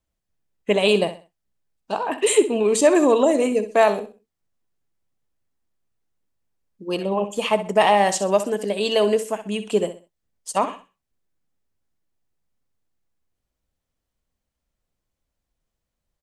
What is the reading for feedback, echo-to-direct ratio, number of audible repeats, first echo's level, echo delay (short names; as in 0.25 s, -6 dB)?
29%, -11.5 dB, 3, -12.0 dB, 64 ms